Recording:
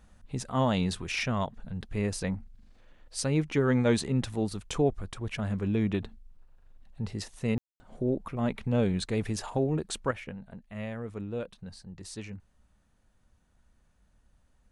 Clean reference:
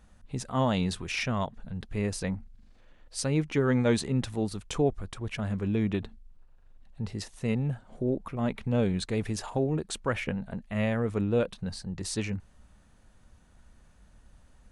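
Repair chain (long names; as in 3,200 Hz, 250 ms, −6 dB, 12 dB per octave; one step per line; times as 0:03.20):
ambience match 0:07.58–0:07.80
level correction +9 dB, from 0:10.11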